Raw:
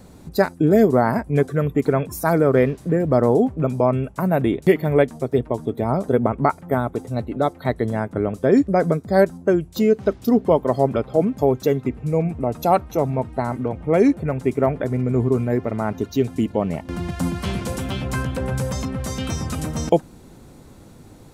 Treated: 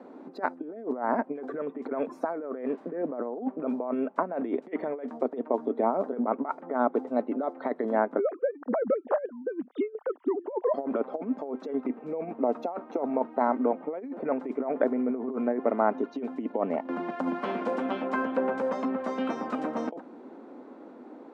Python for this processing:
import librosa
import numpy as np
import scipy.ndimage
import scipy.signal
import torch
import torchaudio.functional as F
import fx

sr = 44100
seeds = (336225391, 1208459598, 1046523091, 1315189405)

y = fx.sine_speech(x, sr, at=(8.19, 10.74))
y = fx.over_compress(y, sr, threshold_db=-22.0, ratio=-0.5)
y = scipy.signal.sosfilt(scipy.signal.butter(2, 1300.0, 'lowpass', fs=sr, output='sos'), y)
y = fx.dynamic_eq(y, sr, hz=330.0, q=1.5, threshold_db=-36.0, ratio=4.0, max_db=-5)
y = scipy.signal.sosfilt(scipy.signal.ellip(4, 1.0, 60, 250.0, 'highpass', fs=sr, output='sos'), y)